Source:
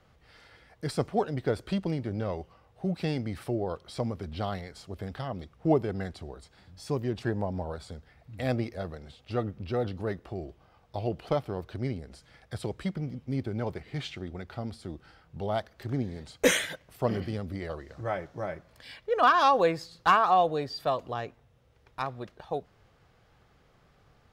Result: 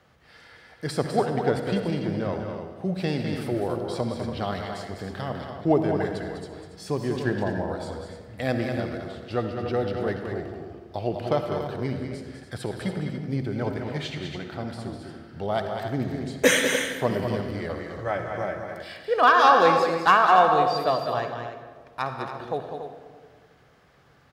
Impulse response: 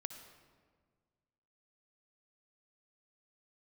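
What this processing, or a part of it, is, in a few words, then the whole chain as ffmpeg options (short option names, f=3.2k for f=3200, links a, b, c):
stadium PA: -filter_complex "[0:a]highpass=f=130:p=1,equalizer=f=1.7k:t=o:w=0.24:g=4,aecho=1:1:201.2|285.7:0.447|0.316[a];[1:a]atrim=start_sample=2205[b];[a][b]afir=irnorm=-1:irlink=0,volume=7dB"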